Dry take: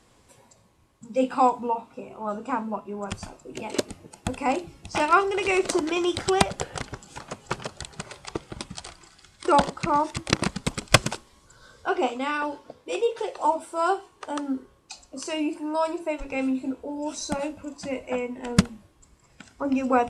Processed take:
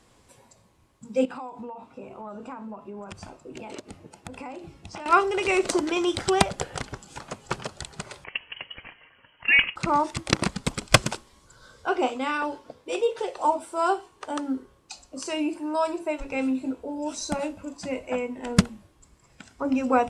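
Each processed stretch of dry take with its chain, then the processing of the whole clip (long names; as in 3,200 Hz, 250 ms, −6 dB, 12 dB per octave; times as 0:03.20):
0:01.25–0:05.06: high-pass filter 42 Hz + high-shelf EQ 5,300 Hz −8 dB + downward compressor 12 to 1, threshold −34 dBFS
0:08.24–0:09.76: high-pass filter 120 Hz + voice inversion scrambler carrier 3,100 Hz
whole clip: no processing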